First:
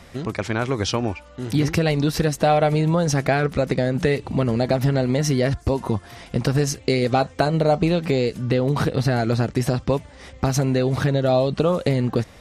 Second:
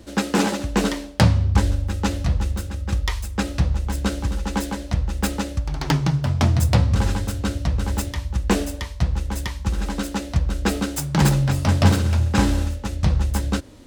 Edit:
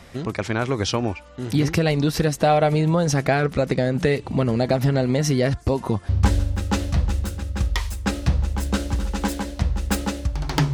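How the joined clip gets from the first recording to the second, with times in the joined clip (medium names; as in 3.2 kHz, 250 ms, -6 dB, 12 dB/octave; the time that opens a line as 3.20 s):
first
6.09 s: go over to second from 1.41 s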